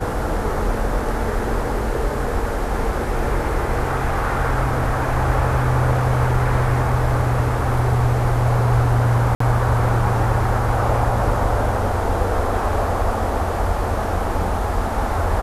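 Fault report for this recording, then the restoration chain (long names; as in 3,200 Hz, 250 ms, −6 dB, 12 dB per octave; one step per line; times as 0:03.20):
0:09.35–0:09.40: drop-out 54 ms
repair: repair the gap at 0:09.35, 54 ms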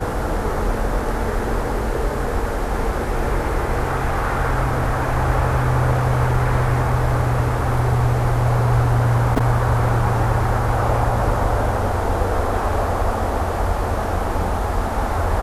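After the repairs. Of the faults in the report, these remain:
none of them is left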